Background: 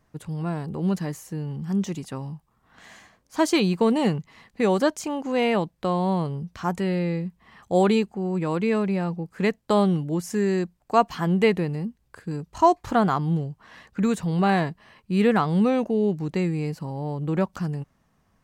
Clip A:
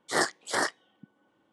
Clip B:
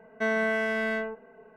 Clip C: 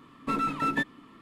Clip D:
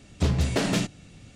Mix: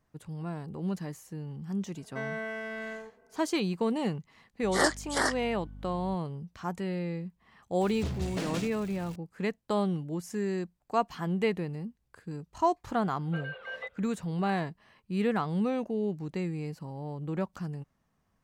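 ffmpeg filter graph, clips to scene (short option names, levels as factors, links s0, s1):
-filter_complex "[0:a]volume=0.376[s0];[1:a]aeval=exprs='val(0)+0.00708*(sin(2*PI*50*n/s)+sin(2*PI*2*50*n/s)/2+sin(2*PI*3*50*n/s)/3+sin(2*PI*4*50*n/s)/4+sin(2*PI*5*50*n/s)/5)':c=same[s1];[4:a]aeval=exprs='val(0)+0.5*0.02*sgn(val(0))':c=same[s2];[3:a]highpass=f=220:t=q:w=0.5412,highpass=f=220:t=q:w=1.307,lowpass=f=3500:t=q:w=0.5176,lowpass=f=3500:t=q:w=0.7071,lowpass=f=3500:t=q:w=1.932,afreqshift=240[s3];[2:a]atrim=end=1.56,asetpts=PTS-STARTPTS,volume=0.335,afade=t=in:d=0.004:c=hsin,afade=t=out:st=1.556:d=0.004:c=hsin,adelay=1950[s4];[s1]atrim=end=1.52,asetpts=PTS-STARTPTS,volume=0.944,afade=t=in:d=0.004:c=hsin,afade=t=out:st=1.516:d=0.004:c=hsin,adelay=4630[s5];[s2]atrim=end=1.35,asetpts=PTS-STARTPTS,volume=0.266,afade=t=in:d=0.004:c=hsin,afade=t=out:st=1.346:d=0.004:c=hsin,adelay=7810[s6];[s3]atrim=end=1.21,asetpts=PTS-STARTPTS,volume=0.251,afade=t=in:d=0.004:c=hsin,afade=t=out:st=1.206:d=0.004:c=hsin,adelay=13050[s7];[s0][s4][s5][s6][s7]amix=inputs=5:normalize=0"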